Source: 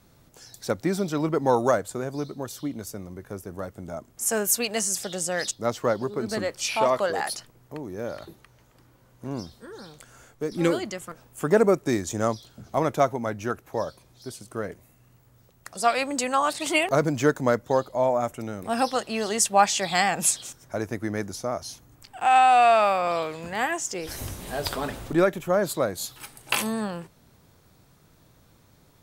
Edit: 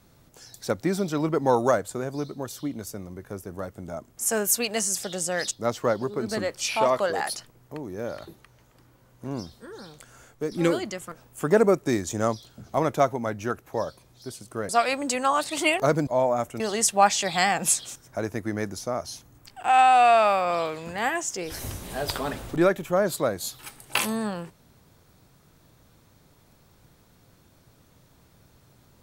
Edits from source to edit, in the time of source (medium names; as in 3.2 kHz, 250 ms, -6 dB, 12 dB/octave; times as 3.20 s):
14.69–15.78 s: delete
17.16–17.91 s: delete
18.44–19.17 s: delete